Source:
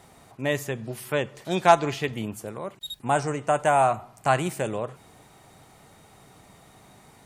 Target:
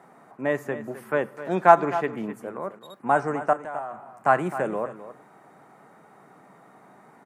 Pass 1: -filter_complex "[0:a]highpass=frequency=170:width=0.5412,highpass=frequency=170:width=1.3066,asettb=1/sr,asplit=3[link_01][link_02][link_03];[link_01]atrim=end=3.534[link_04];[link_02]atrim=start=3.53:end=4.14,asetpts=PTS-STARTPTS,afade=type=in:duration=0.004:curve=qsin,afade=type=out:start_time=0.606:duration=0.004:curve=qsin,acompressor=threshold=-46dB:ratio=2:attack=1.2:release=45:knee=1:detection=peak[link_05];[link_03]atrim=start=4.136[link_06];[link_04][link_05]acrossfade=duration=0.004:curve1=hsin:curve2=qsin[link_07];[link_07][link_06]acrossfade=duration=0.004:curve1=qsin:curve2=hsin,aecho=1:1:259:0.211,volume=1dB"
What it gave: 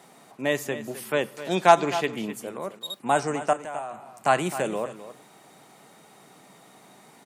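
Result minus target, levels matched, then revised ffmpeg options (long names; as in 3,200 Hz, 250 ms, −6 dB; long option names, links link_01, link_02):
4,000 Hz band +16.0 dB
-filter_complex "[0:a]highpass=frequency=170:width=0.5412,highpass=frequency=170:width=1.3066,highshelf=frequency=2300:width_type=q:width=1.5:gain=-13.5,asettb=1/sr,asplit=3[link_01][link_02][link_03];[link_01]atrim=end=3.534[link_04];[link_02]atrim=start=3.53:end=4.14,asetpts=PTS-STARTPTS,afade=type=in:duration=0.004:curve=qsin,afade=type=out:start_time=0.606:duration=0.004:curve=qsin,acompressor=threshold=-46dB:ratio=2:attack=1.2:release=45:knee=1:detection=peak[link_05];[link_03]atrim=start=4.136[link_06];[link_04][link_05]acrossfade=duration=0.004:curve1=hsin:curve2=qsin[link_07];[link_07][link_06]acrossfade=duration=0.004:curve1=qsin:curve2=hsin,aecho=1:1:259:0.211,volume=1dB"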